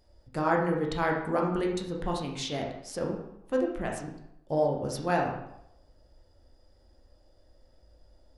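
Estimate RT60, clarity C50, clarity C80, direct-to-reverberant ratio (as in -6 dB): 0.80 s, 4.5 dB, 7.5 dB, -1.0 dB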